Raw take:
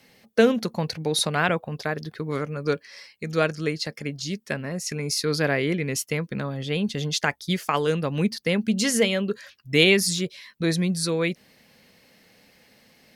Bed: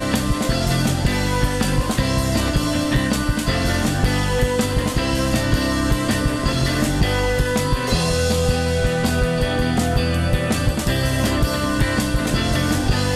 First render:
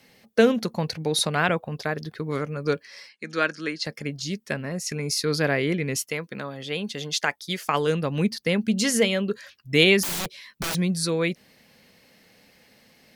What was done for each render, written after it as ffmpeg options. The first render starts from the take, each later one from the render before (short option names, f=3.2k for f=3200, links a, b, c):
-filter_complex "[0:a]asettb=1/sr,asplit=3[a][b][c];[a]atrim=end=3.094[d];[b]atrim=start=3.09:end=3.84,asetpts=PTS-STARTPTS,afade=t=in:d=0.004:c=qsin,afade=t=out:st=0.746:d=0.004:c=qsin,highpass=f=220:w=0.5412,highpass=f=220:w=1.3066,equalizer=f=440:t=q:w=4:g=-7,equalizer=f=710:t=q:w=4:g=-8,equalizer=f=1.6k:t=q:w=4:g=6,equalizer=f=7.4k:t=q:w=4:g=-4,lowpass=f=8.9k:w=0.5412,lowpass=f=8.9k:w=1.3066[e];[c]atrim=start=3.836[f];[d][e]acrossfade=d=0.004:c1=hsin:c2=qsin[g];[g][f]acrossfade=d=0.004:c1=qsin:c2=hsin,asettb=1/sr,asplit=3[h][i][j];[h]atrim=end=6.094[k];[i]atrim=start=6.09:end=7.67,asetpts=PTS-STARTPTS,afade=t=in:d=0.004:c=qsin,afade=t=out:st=1.576:d=0.004:c=qsin,highpass=f=400:p=1[l];[j]atrim=start=7.666[m];[k][l]acrossfade=d=0.004:c1=hsin:c2=qsin[n];[n][m]acrossfade=d=0.004:c1=qsin:c2=hsin,asettb=1/sr,asplit=3[o][p][q];[o]atrim=end=10.034[r];[p]atrim=start=10.03:end=10.75,asetpts=PTS-STARTPTS,afade=t=in:d=0.004:c=qsin,afade=t=out:st=0.716:d=0.004:c=qsin,aeval=exprs='(mod(15*val(0)+1,2)-1)/15':c=same[s];[q]atrim=start=10.746[t];[r][s]acrossfade=d=0.004:c1=hsin:c2=qsin[u];[u][t]acrossfade=d=0.004:c1=qsin:c2=hsin"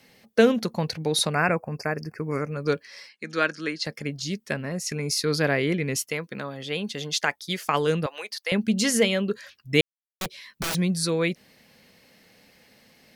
-filter_complex "[0:a]asettb=1/sr,asplit=3[a][b][c];[a]atrim=end=1.334[d];[b]atrim=start=1.33:end=2.51,asetpts=PTS-STARTPTS,afade=t=in:d=0.004:c=qsin,afade=t=out:st=1.176:d=0.004:c=qsin,asuperstop=centerf=3500:order=20:qfactor=1.9[e];[c]atrim=start=2.506[f];[d][e]acrossfade=d=0.004:c1=hsin:c2=qsin[g];[g][f]acrossfade=d=0.004:c1=qsin:c2=hsin,asettb=1/sr,asplit=3[h][i][j];[h]atrim=end=8.064[k];[i]atrim=start=8.06:end=8.52,asetpts=PTS-STARTPTS,afade=t=in:d=0.004:c=qsin,afade=t=out:st=0.456:d=0.004:c=qsin,highpass=f=610:w=0.5412,highpass=f=610:w=1.3066[l];[j]atrim=start=8.516[m];[k][l]acrossfade=d=0.004:c1=hsin:c2=qsin[n];[n][m]acrossfade=d=0.004:c1=qsin:c2=hsin,asplit=3[o][p][q];[o]atrim=end=9.81,asetpts=PTS-STARTPTS,afade=t=out:st=9.806:d=0.004:c=hsin[r];[p]atrim=start=9.81:end=10.21,asetpts=PTS-STARTPTS,volume=0[s];[q]atrim=start=10.21,asetpts=PTS-STARTPTS,afade=t=in:d=0.004:c=hsin[t];[r][s][t]concat=n=3:v=0:a=1"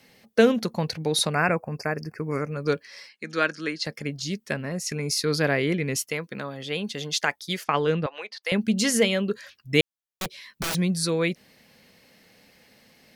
-filter_complex "[0:a]asplit=3[a][b][c];[a]afade=t=out:st=7.63:d=0.02[d];[b]lowpass=3.6k,afade=t=in:st=7.63:d=0.02,afade=t=out:st=8.42:d=0.02[e];[c]afade=t=in:st=8.42:d=0.02[f];[d][e][f]amix=inputs=3:normalize=0"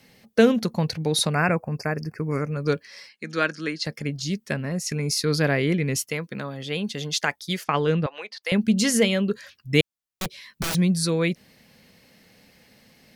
-af "bass=f=250:g=5,treble=f=4k:g=1"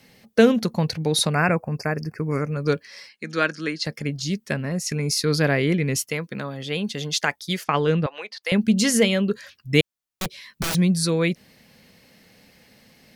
-af "volume=1.5dB,alimiter=limit=-2dB:level=0:latency=1"